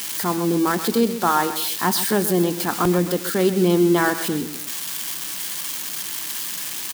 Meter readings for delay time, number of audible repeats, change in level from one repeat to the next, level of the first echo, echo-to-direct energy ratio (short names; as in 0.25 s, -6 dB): 0.13 s, 2, -7.5 dB, -12.0 dB, -11.5 dB